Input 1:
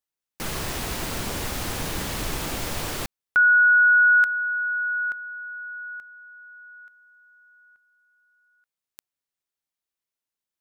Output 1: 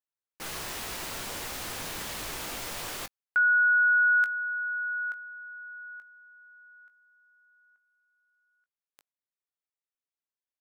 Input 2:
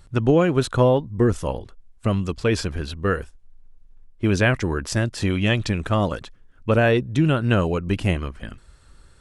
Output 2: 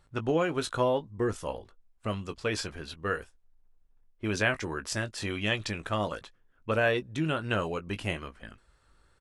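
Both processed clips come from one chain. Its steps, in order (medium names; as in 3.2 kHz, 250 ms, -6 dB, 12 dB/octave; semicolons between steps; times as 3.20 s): bass shelf 360 Hz -11 dB; doubling 19 ms -10.5 dB; tape noise reduction on one side only decoder only; trim -5 dB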